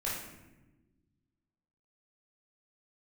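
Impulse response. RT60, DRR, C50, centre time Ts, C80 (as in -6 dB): 1.1 s, -7.5 dB, 1.5 dB, 60 ms, 5.0 dB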